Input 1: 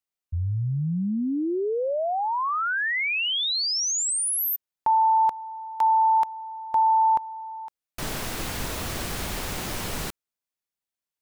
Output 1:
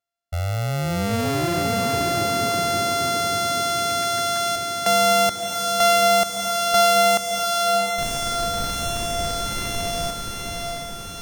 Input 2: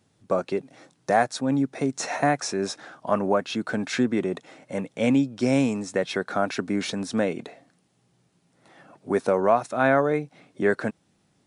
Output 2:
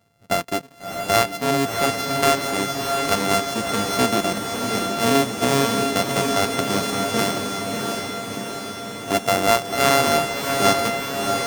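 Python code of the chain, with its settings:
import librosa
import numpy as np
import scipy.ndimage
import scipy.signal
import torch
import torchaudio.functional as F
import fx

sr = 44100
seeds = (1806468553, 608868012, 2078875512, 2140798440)

y = np.r_[np.sort(x[:len(x) // 64 * 64].reshape(-1, 64), axis=1).ravel(), x[len(x) // 64 * 64:]]
y = fx.echo_diffused(y, sr, ms=668, feedback_pct=66, wet_db=-4.0)
y = F.gain(torch.from_numpy(y), 2.0).numpy()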